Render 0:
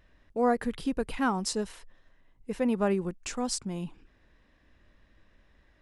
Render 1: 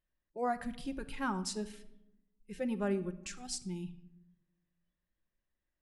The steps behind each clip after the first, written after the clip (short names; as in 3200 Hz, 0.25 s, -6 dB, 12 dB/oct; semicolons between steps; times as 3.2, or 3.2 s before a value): spectral noise reduction 20 dB; shoebox room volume 2800 m³, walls furnished, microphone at 0.92 m; gain -7 dB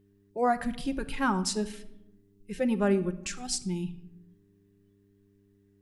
buzz 100 Hz, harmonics 4, -72 dBFS -1 dB/oct; gain +8 dB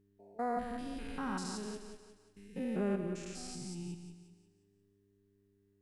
stepped spectrum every 0.2 s; thinning echo 0.178 s, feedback 45%, high-pass 200 Hz, level -8 dB; gain -7 dB